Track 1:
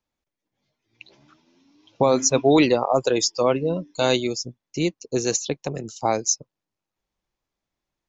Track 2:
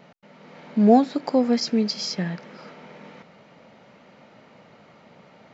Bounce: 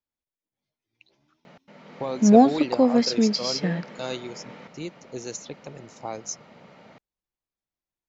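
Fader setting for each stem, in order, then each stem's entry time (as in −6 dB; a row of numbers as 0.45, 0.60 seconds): −12.0, +1.0 decibels; 0.00, 1.45 seconds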